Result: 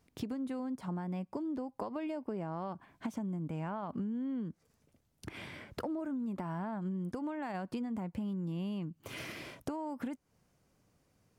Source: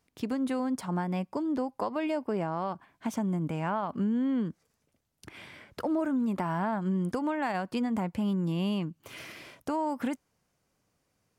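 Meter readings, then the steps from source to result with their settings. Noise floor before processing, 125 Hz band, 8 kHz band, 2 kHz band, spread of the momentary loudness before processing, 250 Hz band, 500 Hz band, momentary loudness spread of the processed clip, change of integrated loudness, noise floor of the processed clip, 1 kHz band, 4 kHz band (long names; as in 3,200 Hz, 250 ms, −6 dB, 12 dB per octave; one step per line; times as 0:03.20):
−77 dBFS, −6.0 dB, can't be measured, −8.0 dB, 12 LU, −7.0 dB, −8.5 dB, 7 LU, −8.0 dB, −75 dBFS, −9.5 dB, −7.0 dB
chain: de-essing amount 90%
low-shelf EQ 500 Hz +6.5 dB
downward compressor 6 to 1, threshold −36 dBFS, peak gain reduction 14.5 dB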